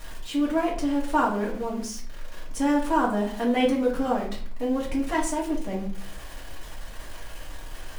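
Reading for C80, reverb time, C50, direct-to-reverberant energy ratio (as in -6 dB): 11.5 dB, 0.45 s, 7.0 dB, -5.0 dB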